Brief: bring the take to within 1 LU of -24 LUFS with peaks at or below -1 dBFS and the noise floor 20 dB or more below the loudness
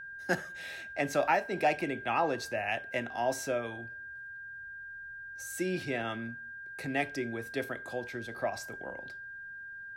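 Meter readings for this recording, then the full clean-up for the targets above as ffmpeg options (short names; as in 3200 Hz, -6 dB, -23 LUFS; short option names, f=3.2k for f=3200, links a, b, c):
steady tone 1600 Hz; tone level -42 dBFS; loudness -34.5 LUFS; peak -15.5 dBFS; loudness target -24.0 LUFS
-> -af "bandreject=f=1.6k:w=30"
-af "volume=10.5dB"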